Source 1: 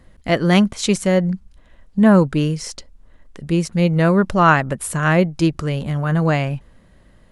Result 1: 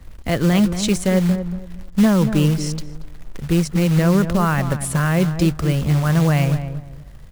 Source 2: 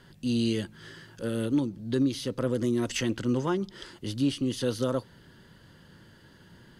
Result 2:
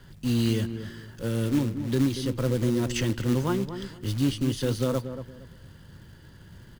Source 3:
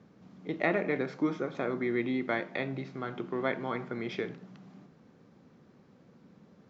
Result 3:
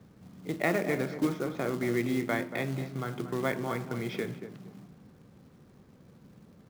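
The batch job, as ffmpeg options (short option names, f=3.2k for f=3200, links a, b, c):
-filter_complex "[0:a]acrossover=split=110[a][b];[a]aeval=exprs='0.0891*sin(PI/2*2.51*val(0)/0.0891)':c=same[c];[b]alimiter=limit=-10dB:level=0:latency=1:release=63[d];[c][d]amix=inputs=2:normalize=0,acrusher=bits=4:mode=log:mix=0:aa=0.000001,asplit=2[e][f];[f]adelay=232,lowpass=f=1.1k:p=1,volume=-9dB,asplit=2[g][h];[h]adelay=232,lowpass=f=1.1k:p=1,volume=0.27,asplit=2[i][j];[j]adelay=232,lowpass=f=1.1k:p=1,volume=0.27[k];[e][g][i][k]amix=inputs=4:normalize=0"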